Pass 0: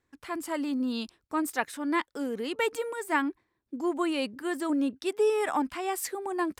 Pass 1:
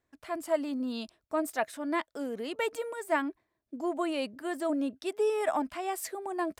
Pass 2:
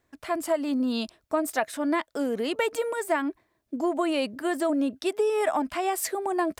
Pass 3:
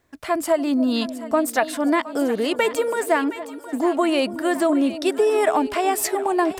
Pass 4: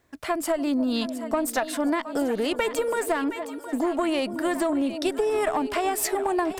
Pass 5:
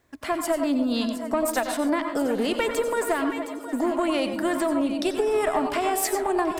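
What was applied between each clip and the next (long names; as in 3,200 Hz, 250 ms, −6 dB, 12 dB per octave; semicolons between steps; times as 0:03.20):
parametric band 640 Hz +14.5 dB 0.22 octaves; level −4 dB
downward compressor, threshold −30 dBFS, peak gain reduction 8 dB; level +8.5 dB
echo with a time of its own for lows and highs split 710 Hz, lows 285 ms, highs 716 ms, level −13 dB; level +6 dB
one-sided soft clipper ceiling −12.5 dBFS; downward compressor, threshold −21 dBFS, peak gain reduction 6.5 dB
convolution reverb RT60 0.35 s, pre-delay 82 ms, DRR 6 dB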